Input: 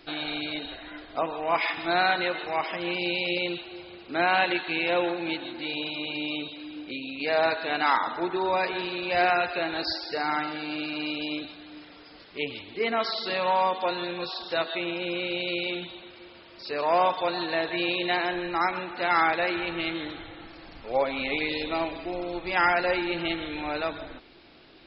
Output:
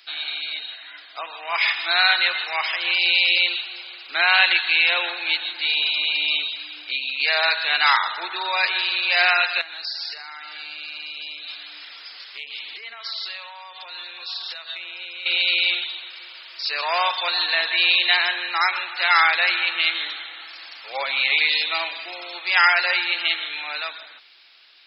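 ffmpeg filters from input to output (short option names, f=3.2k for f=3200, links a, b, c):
-filter_complex "[0:a]asettb=1/sr,asplit=3[a][b][c];[a]atrim=end=9.614[d];[b]atrim=start=9.61:end=15.26,asetpts=PTS-STARTPTS,afade=t=in:d=0.004:c=qsin,afade=t=out:st=5.646:d=0.004:c=qsin,acompressor=threshold=-39dB:ratio=10:attack=3.2:release=140:knee=1:detection=peak[e];[c]atrim=start=15.256[f];[d][e]acrossfade=d=0.004:c1=hsin:c2=qsin[g];[g][f]acrossfade=d=0.004:c1=qsin:c2=hsin,highpass=1.4k,dynaudnorm=f=240:g=13:m=7.5dB,highshelf=f=2.9k:g=8.5,volume=1dB"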